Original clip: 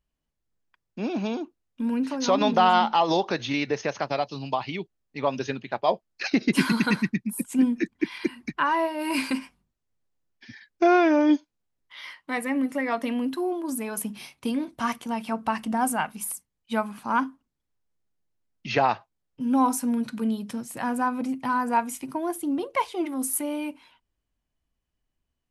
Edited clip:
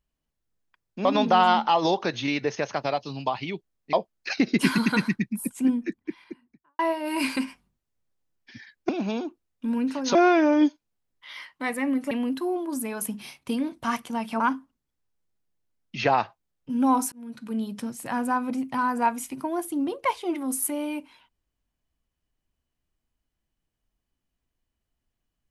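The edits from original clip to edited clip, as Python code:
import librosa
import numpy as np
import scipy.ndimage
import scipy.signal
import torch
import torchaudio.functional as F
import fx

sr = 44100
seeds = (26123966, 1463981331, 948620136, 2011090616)

y = fx.studio_fade_out(x, sr, start_s=7.23, length_s=1.5)
y = fx.edit(y, sr, fx.move(start_s=1.05, length_s=1.26, to_s=10.83),
    fx.cut(start_s=5.19, length_s=0.68),
    fx.cut(start_s=12.79, length_s=0.28),
    fx.cut(start_s=15.36, length_s=1.75),
    fx.fade_in_span(start_s=19.83, length_s=0.63), tone=tone)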